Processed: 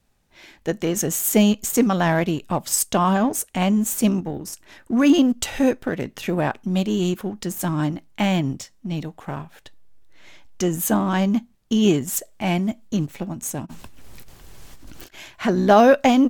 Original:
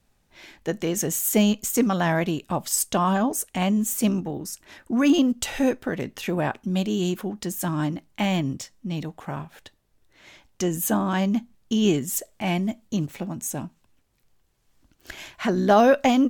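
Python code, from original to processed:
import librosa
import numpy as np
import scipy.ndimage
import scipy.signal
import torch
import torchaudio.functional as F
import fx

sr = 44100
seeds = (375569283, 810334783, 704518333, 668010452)

p1 = fx.backlash(x, sr, play_db=-23.0)
p2 = x + (p1 * 10.0 ** (-6.0 / 20.0))
y = fx.over_compress(p2, sr, threshold_db=-60.0, ratio=-1.0, at=(13.65, 15.13), fade=0.02)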